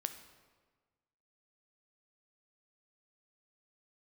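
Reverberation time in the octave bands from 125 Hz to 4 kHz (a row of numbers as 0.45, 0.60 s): 1.7, 1.5, 1.5, 1.4, 1.2, 1.0 s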